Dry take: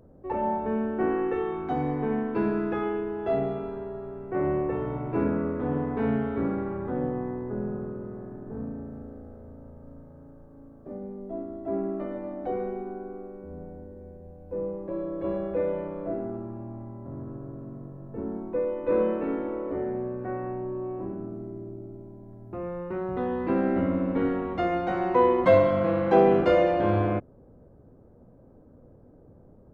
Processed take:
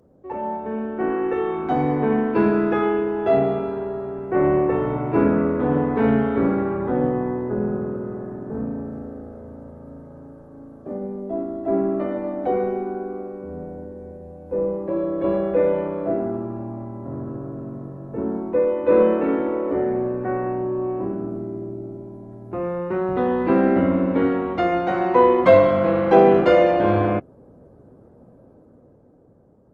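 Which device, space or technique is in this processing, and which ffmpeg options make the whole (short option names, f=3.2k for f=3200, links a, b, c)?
video call: -af "highpass=f=130:p=1,dynaudnorm=f=160:g=17:m=9dB" -ar 48000 -c:a libopus -b:a 20k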